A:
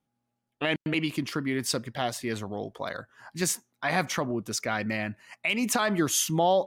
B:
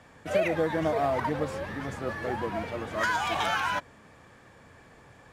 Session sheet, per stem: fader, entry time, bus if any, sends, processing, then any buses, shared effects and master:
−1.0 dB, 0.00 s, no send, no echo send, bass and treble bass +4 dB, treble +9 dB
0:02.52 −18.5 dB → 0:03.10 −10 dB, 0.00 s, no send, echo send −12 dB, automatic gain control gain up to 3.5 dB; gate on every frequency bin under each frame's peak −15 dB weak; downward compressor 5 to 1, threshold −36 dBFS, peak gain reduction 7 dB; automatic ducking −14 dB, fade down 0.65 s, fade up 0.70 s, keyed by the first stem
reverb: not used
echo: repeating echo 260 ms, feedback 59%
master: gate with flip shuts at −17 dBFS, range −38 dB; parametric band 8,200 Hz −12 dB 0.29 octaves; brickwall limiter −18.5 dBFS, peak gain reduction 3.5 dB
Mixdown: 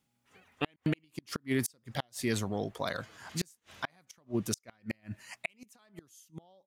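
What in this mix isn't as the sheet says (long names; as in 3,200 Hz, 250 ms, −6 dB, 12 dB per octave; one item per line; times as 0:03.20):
stem B: missing downward compressor 5 to 1, threshold −36 dBFS, peak gain reduction 7 dB
master: missing parametric band 8,200 Hz −12 dB 0.29 octaves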